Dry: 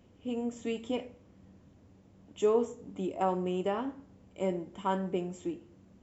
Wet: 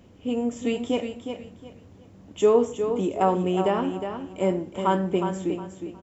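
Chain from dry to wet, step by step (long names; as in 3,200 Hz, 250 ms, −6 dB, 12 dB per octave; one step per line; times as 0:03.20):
repeating echo 362 ms, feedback 26%, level −8 dB
level +8 dB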